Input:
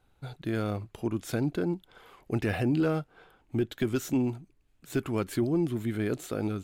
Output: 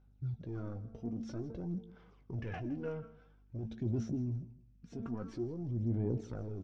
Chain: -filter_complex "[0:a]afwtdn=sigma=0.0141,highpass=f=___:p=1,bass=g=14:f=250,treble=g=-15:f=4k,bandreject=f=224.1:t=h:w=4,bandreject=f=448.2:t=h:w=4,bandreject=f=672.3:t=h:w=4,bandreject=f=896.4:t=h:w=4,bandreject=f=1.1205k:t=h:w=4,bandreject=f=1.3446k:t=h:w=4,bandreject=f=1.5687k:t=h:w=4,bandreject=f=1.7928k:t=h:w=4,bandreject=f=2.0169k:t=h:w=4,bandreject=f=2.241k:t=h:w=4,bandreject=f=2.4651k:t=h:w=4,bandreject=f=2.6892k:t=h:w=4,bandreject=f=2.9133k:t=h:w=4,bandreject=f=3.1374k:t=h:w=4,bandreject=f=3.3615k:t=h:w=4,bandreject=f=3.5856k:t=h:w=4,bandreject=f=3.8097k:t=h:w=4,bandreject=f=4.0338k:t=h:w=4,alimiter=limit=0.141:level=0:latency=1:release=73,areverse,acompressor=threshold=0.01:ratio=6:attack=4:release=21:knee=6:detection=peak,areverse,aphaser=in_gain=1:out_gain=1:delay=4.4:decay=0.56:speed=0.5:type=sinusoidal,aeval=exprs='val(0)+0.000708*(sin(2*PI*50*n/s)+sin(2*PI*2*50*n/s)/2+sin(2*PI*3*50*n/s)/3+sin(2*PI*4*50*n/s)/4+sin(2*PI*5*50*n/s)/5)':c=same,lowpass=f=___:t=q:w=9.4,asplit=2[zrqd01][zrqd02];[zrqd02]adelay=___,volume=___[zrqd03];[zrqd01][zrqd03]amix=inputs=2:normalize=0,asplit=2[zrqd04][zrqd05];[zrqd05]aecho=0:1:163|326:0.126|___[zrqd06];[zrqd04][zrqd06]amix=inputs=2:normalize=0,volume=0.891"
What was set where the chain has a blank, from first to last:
160, 5.7k, 17, 0.299, 0.0327